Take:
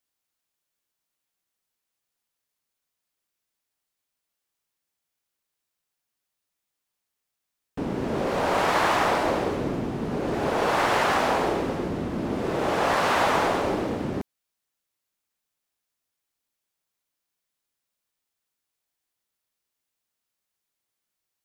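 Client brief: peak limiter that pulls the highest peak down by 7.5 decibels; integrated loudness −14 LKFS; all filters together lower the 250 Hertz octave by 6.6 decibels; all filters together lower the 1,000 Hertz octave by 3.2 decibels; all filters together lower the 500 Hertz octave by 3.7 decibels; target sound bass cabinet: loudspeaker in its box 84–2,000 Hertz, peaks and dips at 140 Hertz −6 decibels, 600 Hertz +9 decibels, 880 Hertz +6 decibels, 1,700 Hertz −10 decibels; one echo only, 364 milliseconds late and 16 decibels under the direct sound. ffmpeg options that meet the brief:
ffmpeg -i in.wav -af "equalizer=frequency=250:width_type=o:gain=-5,equalizer=frequency=500:width_type=o:gain=-9,equalizer=frequency=1000:width_type=o:gain=-5.5,alimiter=limit=-22.5dB:level=0:latency=1,highpass=frequency=84:width=0.5412,highpass=frequency=84:width=1.3066,equalizer=frequency=140:width_type=q:width=4:gain=-6,equalizer=frequency=600:width_type=q:width=4:gain=9,equalizer=frequency=880:width_type=q:width=4:gain=6,equalizer=frequency=1700:width_type=q:width=4:gain=-10,lowpass=frequency=2000:width=0.5412,lowpass=frequency=2000:width=1.3066,aecho=1:1:364:0.158,volume=17.5dB" out.wav

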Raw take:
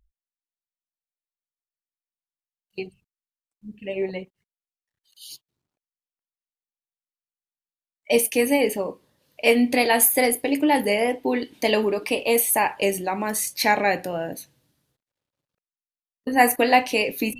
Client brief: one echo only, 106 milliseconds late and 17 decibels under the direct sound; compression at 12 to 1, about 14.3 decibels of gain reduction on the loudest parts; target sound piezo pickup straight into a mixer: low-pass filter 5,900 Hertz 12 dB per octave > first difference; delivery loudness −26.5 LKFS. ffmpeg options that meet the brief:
ffmpeg -i in.wav -af "acompressor=threshold=-26dB:ratio=12,lowpass=5900,aderivative,aecho=1:1:106:0.141,volume=17.5dB" out.wav

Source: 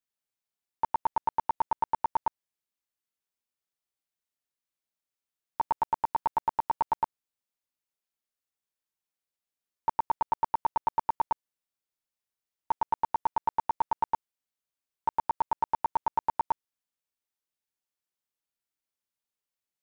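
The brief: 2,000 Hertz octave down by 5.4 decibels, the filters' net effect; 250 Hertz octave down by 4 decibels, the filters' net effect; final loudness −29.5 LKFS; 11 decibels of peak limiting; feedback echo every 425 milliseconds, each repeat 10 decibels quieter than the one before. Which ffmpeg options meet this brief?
ffmpeg -i in.wav -af "equalizer=frequency=250:width_type=o:gain=-5.5,equalizer=frequency=2000:width_type=o:gain=-7.5,alimiter=level_in=6.5dB:limit=-24dB:level=0:latency=1,volume=-6.5dB,aecho=1:1:425|850|1275|1700:0.316|0.101|0.0324|0.0104,volume=14dB" out.wav

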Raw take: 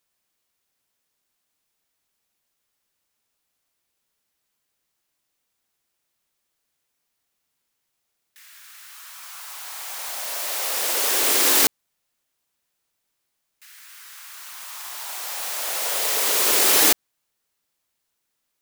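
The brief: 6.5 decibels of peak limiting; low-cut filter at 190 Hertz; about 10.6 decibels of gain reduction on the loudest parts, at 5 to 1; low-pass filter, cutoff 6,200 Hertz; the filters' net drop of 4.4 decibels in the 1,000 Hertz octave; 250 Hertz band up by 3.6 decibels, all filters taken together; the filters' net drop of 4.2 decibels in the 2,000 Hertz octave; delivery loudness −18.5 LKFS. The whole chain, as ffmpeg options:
ffmpeg -i in.wav -af "highpass=190,lowpass=6200,equalizer=frequency=250:width_type=o:gain=6.5,equalizer=frequency=1000:width_type=o:gain=-5,equalizer=frequency=2000:width_type=o:gain=-4,acompressor=threshold=-30dB:ratio=5,volume=17.5dB,alimiter=limit=-8.5dB:level=0:latency=1" out.wav

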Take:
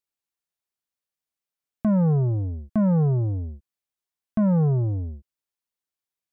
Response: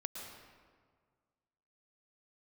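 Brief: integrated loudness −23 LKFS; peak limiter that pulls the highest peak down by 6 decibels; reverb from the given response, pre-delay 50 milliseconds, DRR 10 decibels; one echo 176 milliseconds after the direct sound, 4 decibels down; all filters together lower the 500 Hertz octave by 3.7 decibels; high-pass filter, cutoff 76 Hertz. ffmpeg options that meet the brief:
-filter_complex "[0:a]highpass=76,equalizer=frequency=500:width_type=o:gain=-4.5,alimiter=limit=-22dB:level=0:latency=1,aecho=1:1:176:0.631,asplit=2[link_01][link_02];[1:a]atrim=start_sample=2205,adelay=50[link_03];[link_02][link_03]afir=irnorm=-1:irlink=0,volume=-9dB[link_04];[link_01][link_04]amix=inputs=2:normalize=0,volume=4dB"

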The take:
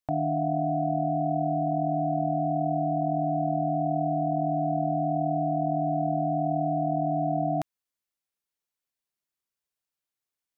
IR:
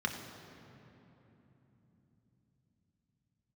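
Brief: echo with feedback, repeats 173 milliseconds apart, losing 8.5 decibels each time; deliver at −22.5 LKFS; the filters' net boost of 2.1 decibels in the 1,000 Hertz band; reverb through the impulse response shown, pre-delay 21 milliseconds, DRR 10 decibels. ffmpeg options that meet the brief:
-filter_complex "[0:a]equalizer=frequency=1000:width_type=o:gain=4,aecho=1:1:173|346|519|692:0.376|0.143|0.0543|0.0206,asplit=2[link_01][link_02];[1:a]atrim=start_sample=2205,adelay=21[link_03];[link_02][link_03]afir=irnorm=-1:irlink=0,volume=-15.5dB[link_04];[link_01][link_04]amix=inputs=2:normalize=0,volume=1.5dB"

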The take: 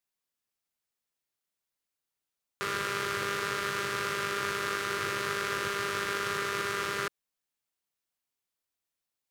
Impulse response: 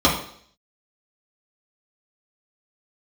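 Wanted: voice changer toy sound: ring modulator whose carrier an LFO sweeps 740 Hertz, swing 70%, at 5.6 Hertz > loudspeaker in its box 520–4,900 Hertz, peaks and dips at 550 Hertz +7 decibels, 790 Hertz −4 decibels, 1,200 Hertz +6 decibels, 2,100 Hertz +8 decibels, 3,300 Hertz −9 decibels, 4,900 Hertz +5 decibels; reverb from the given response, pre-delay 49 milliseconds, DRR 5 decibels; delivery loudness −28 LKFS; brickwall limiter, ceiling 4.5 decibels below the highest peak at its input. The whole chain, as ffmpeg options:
-filter_complex "[0:a]alimiter=limit=-19dB:level=0:latency=1,asplit=2[link_01][link_02];[1:a]atrim=start_sample=2205,adelay=49[link_03];[link_02][link_03]afir=irnorm=-1:irlink=0,volume=-25.5dB[link_04];[link_01][link_04]amix=inputs=2:normalize=0,aeval=exprs='val(0)*sin(2*PI*740*n/s+740*0.7/5.6*sin(2*PI*5.6*n/s))':channel_layout=same,highpass=520,equalizer=frequency=550:width_type=q:width=4:gain=7,equalizer=frequency=790:width_type=q:width=4:gain=-4,equalizer=frequency=1200:width_type=q:width=4:gain=6,equalizer=frequency=2100:width_type=q:width=4:gain=8,equalizer=frequency=3300:width_type=q:width=4:gain=-9,equalizer=frequency=4900:width_type=q:width=4:gain=5,lowpass=frequency=4900:width=0.5412,lowpass=frequency=4900:width=1.3066,volume=5dB"

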